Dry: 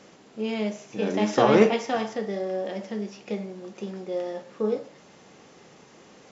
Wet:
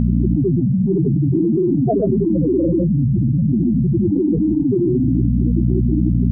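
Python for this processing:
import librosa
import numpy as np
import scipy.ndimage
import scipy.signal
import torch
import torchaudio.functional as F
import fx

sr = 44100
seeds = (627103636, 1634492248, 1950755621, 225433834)

y = fx.pitch_ramps(x, sr, semitones=-11.5, every_ms=161)
y = fx.level_steps(y, sr, step_db=14)
y = fx.granulator(y, sr, seeds[0], grain_ms=100.0, per_s=20.0, spray_ms=100.0, spread_st=0)
y = fx.peak_eq(y, sr, hz=180.0, db=9.5, octaves=1.4)
y = fx.room_shoebox(y, sr, seeds[1], volume_m3=2500.0, walls='furnished', distance_m=0.77)
y = fx.transient(y, sr, attack_db=3, sustain_db=8)
y = fx.spec_topn(y, sr, count=4)
y = y + 0.61 * np.pad(y, (int(2.9 * sr / 1000.0), 0))[:len(y)]
y = fx.dmg_buzz(y, sr, base_hz=60.0, harmonics=4, level_db=-53.0, tilt_db=-2, odd_only=False)
y = fx.env_flatten(y, sr, amount_pct=100)
y = y * 10.0 ** (3.5 / 20.0)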